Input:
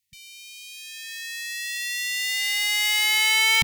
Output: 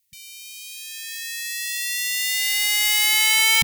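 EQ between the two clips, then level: treble shelf 6.9 kHz +10.5 dB; 0.0 dB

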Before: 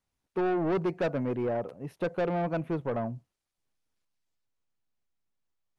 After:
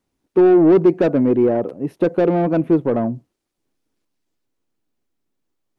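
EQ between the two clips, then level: peaking EQ 310 Hz +13 dB 1.4 oct; +5.5 dB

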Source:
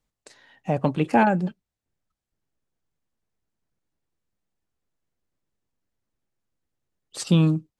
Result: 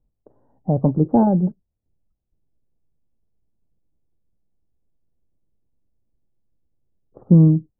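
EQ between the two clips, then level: Gaussian low-pass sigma 12 samples; bass shelf 89 Hz +8.5 dB; +5.5 dB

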